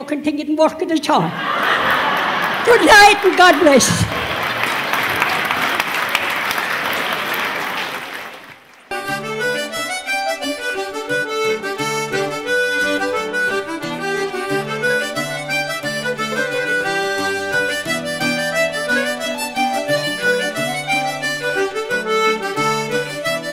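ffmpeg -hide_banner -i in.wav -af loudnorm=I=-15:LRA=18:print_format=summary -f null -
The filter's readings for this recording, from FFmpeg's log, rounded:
Input Integrated:    -17.2 LUFS
Input True Peak:      -2.3 dBTP
Input LRA:             8.6 LU
Input Threshold:     -27.4 LUFS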